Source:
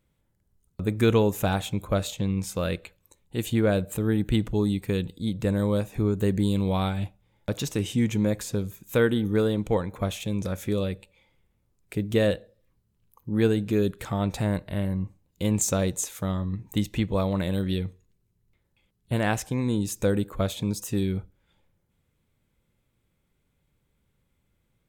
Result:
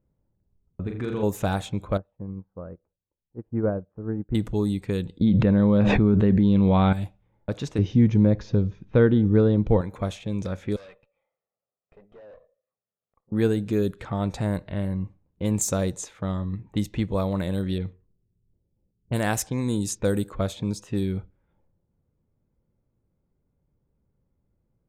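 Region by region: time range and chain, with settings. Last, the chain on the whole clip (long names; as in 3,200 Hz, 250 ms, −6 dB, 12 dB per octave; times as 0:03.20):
0:00.82–0:01.23: high-shelf EQ 6,300 Hz −6 dB + downward compressor, threshold −25 dBFS + flutter between parallel walls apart 7 metres, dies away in 0.55 s
0:01.97–0:04.35: low-pass filter 1,300 Hz 24 dB per octave + expander for the loud parts 2.5 to 1, over −35 dBFS
0:05.21–0:06.93: low-pass filter 3,400 Hz 24 dB per octave + parametric band 210 Hz +6.5 dB 0.25 octaves + envelope flattener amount 100%
0:07.78–0:09.81: Butterworth low-pass 6,100 Hz 72 dB per octave + spectral tilt −2.5 dB per octave
0:10.76–0:13.32: high-pass filter 670 Hz + comb filter 1.6 ms, depth 67% + tube saturation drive 44 dB, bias 0.75
0:17.78–0:20.39: low-pass that shuts in the quiet parts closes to 480 Hz, open at −22.5 dBFS + high-shelf EQ 4,300 Hz +9.5 dB
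whole clip: low-pass that shuts in the quiet parts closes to 770 Hz, open at −20.5 dBFS; dynamic equaliser 2,800 Hz, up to −5 dB, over −47 dBFS, Q 1.5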